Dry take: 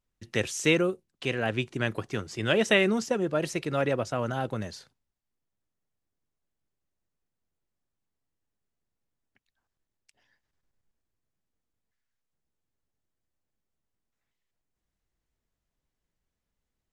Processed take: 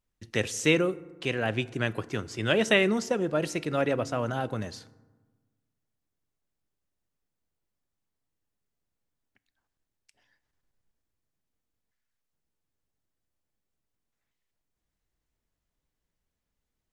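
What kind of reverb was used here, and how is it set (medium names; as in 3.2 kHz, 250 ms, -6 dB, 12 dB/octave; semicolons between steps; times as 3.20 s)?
FDN reverb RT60 1.3 s, low-frequency decay 1.25×, high-frequency decay 0.45×, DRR 17 dB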